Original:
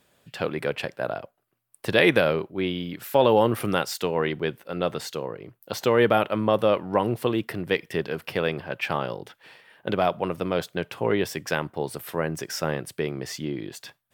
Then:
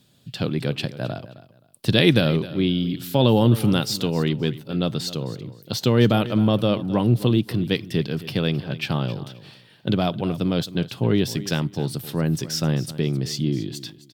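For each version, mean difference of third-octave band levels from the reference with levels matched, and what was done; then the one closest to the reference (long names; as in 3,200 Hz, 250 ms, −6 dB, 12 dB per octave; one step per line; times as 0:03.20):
5.5 dB: octave-band graphic EQ 125/250/500/1,000/2,000/4,000 Hz +11/+6/−5/−5/−7/+9 dB
on a send: repeating echo 263 ms, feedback 22%, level −16 dB
on the sum: level +1.5 dB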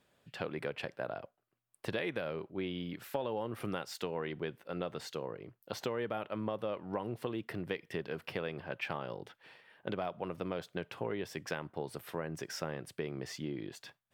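3.0 dB: high-shelf EQ 6,800 Hz −8.5 dB
downward compressor 6 to 1, threshold −26 dBFS, peak gain reduction 12.5 dB
level −7 dB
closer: second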